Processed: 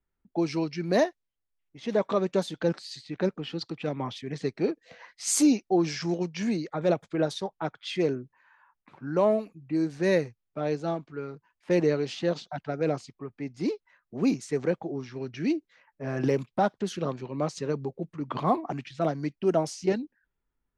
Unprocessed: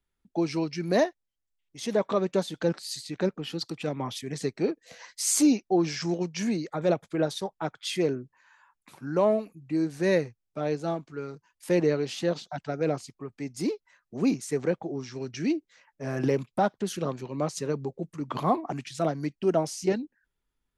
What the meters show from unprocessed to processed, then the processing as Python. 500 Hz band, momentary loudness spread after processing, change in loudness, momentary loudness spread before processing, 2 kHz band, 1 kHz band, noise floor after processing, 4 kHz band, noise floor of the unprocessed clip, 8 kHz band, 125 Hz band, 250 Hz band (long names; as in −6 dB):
0.0 dB, 12 LU, 0.0 dB, 11 LU, 0.0 dB, 0.0 dB, −83 dBFS, −1.5 dB, −82 dBFS, −2.0 dB, 0.0 dB, 0.0 dB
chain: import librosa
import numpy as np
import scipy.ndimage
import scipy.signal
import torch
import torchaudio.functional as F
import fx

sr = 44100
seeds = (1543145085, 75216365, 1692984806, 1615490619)

y = fx.env_lowpass(x, sr, base_hz=1900.0, full_db=-20.5)